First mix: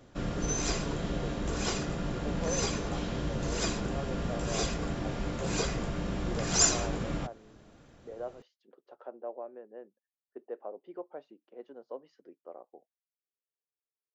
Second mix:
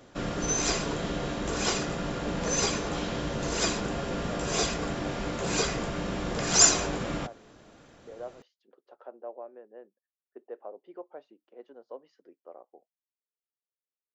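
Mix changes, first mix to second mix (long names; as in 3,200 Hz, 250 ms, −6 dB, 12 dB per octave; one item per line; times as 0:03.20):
background +5.5 dB
master: add low-shelf EQ 190 Hz −9.5 dB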